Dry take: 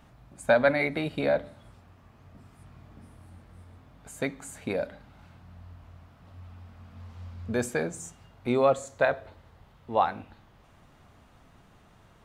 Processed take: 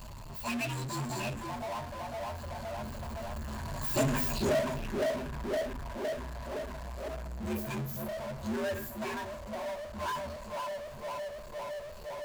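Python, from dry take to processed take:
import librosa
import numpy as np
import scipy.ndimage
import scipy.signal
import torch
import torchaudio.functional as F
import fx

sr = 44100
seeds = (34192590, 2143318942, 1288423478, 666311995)

p1 = fx.partial_stretch(x, sr, pct=123)
p2 = fx.doppler_pass(p1, sr, speed_mps=20, closest_m=1.8, pass_at_s=4.13)
p3 = fx.pitch_keep_formants(p2, sr, semitones=-1.0)
p4 = p3 + fx.echo_banded(p3, sr, ms=511, feedback_pct=73, hz=530.0, wet_db=-7.0, dry=0)
p5 = fx.env_phaser(p4, sr, low_hz=310.0, high_hz=4200.0, full_db=-45.0)
p6 = fx.ripple_eq(p5, sr, per_octave=1.4, db=17)
p7 = fx.power_curve(p6, sr, exponent=0.35)
y = p7 * librosa.db_to_amplitude(5.0)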